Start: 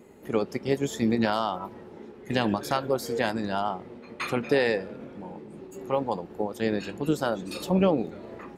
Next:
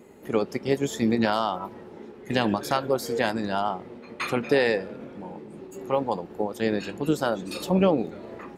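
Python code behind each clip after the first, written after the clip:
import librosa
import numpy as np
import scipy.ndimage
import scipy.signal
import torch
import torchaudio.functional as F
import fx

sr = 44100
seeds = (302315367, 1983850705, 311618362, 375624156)

y = fx.low_shelf(x, sr, hz=120.0, db=-3.5)
y = y * librosa.db_to_amplitude(2.0)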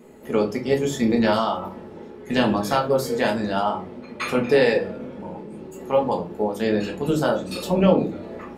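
y = fx.room_shoebox(x, sr, seeds[0], volume_m3=130.0, walls='furnished', distance_m=1.5)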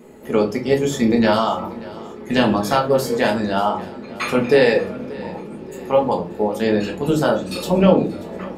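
y = fx.echo_feedback(x, sr, ms=584, feedback_pct=48, wet_db=-20.0)
y = y * librosa.db_to_amplitude(3.5)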